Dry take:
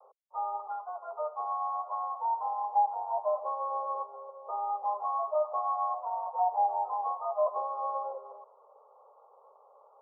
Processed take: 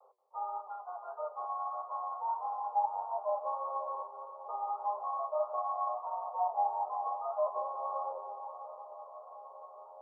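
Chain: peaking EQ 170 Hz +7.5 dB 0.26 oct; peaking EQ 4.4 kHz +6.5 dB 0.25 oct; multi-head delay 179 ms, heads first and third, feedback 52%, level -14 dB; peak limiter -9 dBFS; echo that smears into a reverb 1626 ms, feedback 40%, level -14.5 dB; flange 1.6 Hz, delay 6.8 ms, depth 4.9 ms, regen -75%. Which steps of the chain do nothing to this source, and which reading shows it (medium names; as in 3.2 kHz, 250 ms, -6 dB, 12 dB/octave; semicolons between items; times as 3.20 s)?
peaking EQ 170 Hz: input has nothing below 400 Hz; peaking EQ 4.4 kHz: input has nothing above 1.3 kHz; peak limiter -9 dBFS: peak at its input -17.5 dBFS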